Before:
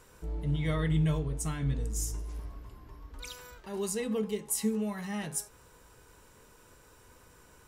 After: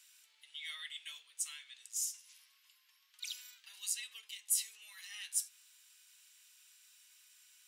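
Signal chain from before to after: ladder high-pass 2.3 kHz, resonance 30%; trim +6.5 dB

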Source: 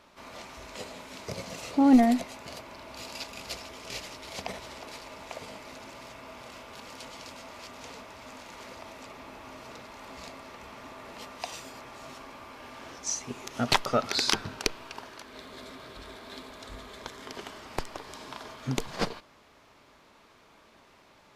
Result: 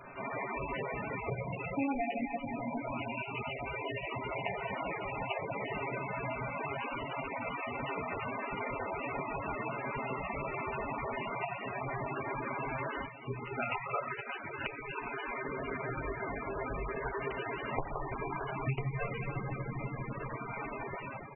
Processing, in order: rattle on loud lows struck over -28 dBFS, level -18 dBFS; de-hum 66.13 Hz, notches 10; 13.40–15.43 s: bass shelf 370 Hz -9.5 dB; comb 7.2 ms, depth 45%; reverberation RT60 2.3 s, pre-delay 4 ms, DRR -3 dB; level rider gain up to 10 dB; reverb removal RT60 0.86 s; dynamic bell 250 Hz, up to -7 dB, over -40 dBFS, Q 2.6; compression 5:1, threshold -41 dBFS, peak gain reduction 25.5 dB; trim +6.5 dB; MP3 8 kbps 24 kHz

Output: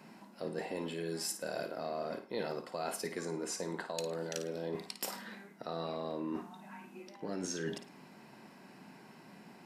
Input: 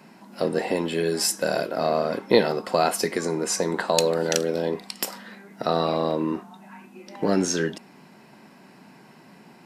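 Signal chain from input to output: reverse; compression 6:1, threshold -30 dBFS, peak gain reduction 17.5 dB; reverse; flutter echo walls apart 9.3 m, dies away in 0.32 s; trim -5.5 dB

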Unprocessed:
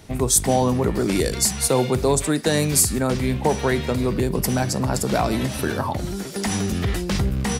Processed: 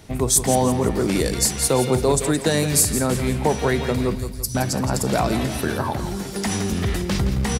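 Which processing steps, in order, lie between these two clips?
4.15–4.55 s: Chebyshev band-stop 110–4400 Hz, order 4; feedback delay 169 ms, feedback 44%, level -10.5 dB

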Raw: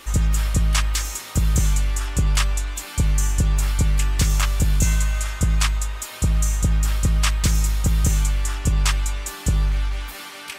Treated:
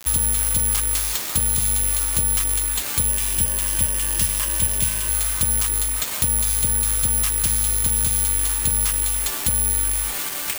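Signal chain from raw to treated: compression 5:1, threshold -28 dBFS, peak gain reduction 13 dB; bit crusher 6-bit; 3.09–5.09 s: rippled EQ curve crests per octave 1.3, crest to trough 10 dB; careless resampling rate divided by 4×, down none, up zero stuff; trim +2.5 dB

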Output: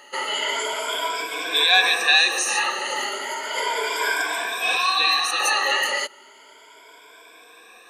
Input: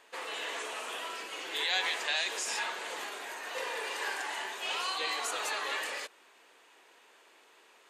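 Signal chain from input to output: drifting ripple filter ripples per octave 1.7, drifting +0.34 Hz, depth 21 dB; 4.77–5.40 s: graphic EQ 125/500/4000/8000 Hz -4/-11/+4/-7 dB; trim +8 dB

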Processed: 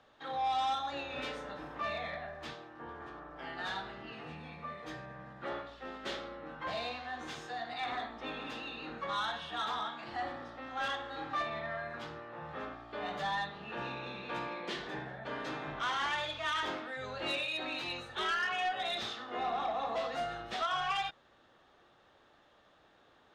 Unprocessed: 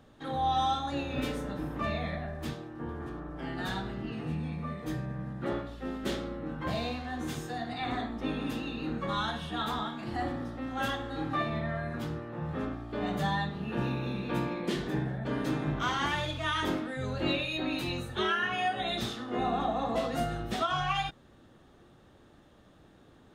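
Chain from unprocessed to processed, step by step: three-band isolator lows -16 dB, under 510 Hz, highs -22 dB, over 6.2 kHz; saturation -27 dBFS, distortion -16 dB

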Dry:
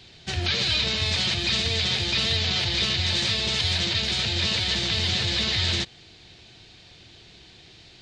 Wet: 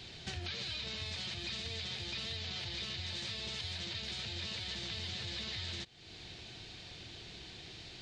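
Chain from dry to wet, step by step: compression 4:1, threshold -42 dBFS, peak gain reduction 17.5 dB

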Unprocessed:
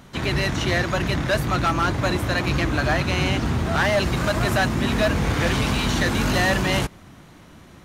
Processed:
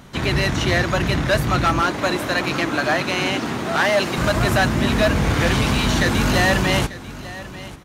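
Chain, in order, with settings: 1.81–4.18 s: high-pass 230 Hz 12 dB/octave; delay 892 ms -16.5 dB; trim +3 dB

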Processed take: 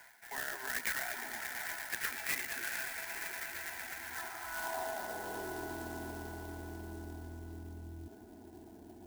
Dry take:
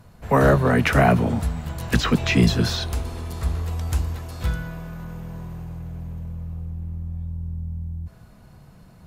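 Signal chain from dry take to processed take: bass shelf 330 Hz -8.5 dB; static phaser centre 780 Hz, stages 8; reverse; compression 16:1, threshold -37 dBFS, peak gain reduction 21 dB; reverse; peak limiter -36.5 dBFS, peak gain reduction 10.5 dB; band-pass sweep 1.9 kHz -> 320 Hz, 3.91–5.76 s; echo with a slow build-up 117 ms, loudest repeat 5, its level -13 dB; loudest bins only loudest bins 64; sampling jitter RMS 0.061 ms; trim +14.5 dB

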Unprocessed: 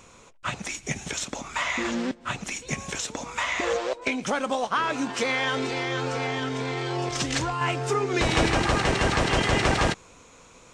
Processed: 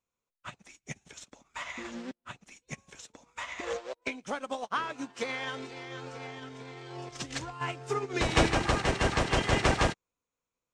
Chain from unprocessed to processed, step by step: upward expansion 2.5:1, over -45 dBFS

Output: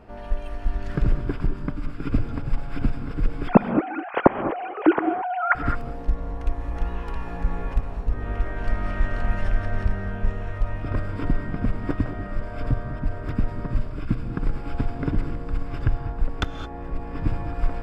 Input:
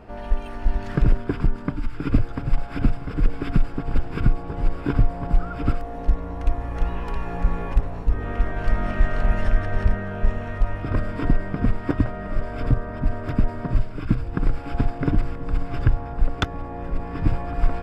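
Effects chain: 3.48–5.55 s: formants replaced by sine waves; gated-style reverb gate 240 ms rising, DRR 9 dB; trim -3.5 dB

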